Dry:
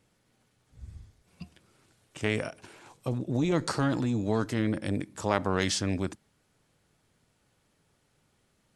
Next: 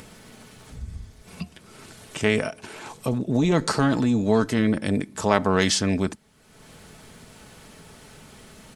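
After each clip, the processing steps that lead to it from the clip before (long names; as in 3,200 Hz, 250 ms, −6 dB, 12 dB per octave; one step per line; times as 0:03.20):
comb filter 4.6 ms, depth 34%
in parallel at +1 dB: upward compression, threshold −30 dBFS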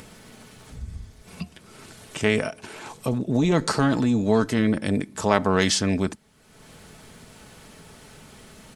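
no processing that can be heard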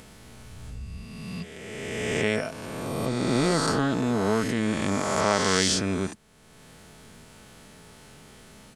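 peak hold with a rise ahead of every peak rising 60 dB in 2.26 s
level −6 dB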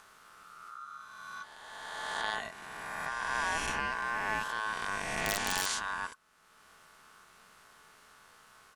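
ring modulation 1,300 Hz
wrap-around overflow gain 10.5 dB
level −6.5 dB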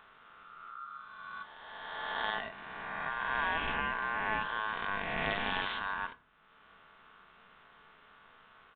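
downsampling to 8,000 Hz
on a send at −13 dB: convolution reverb RT60 0.45 s, pre-delay 4 ms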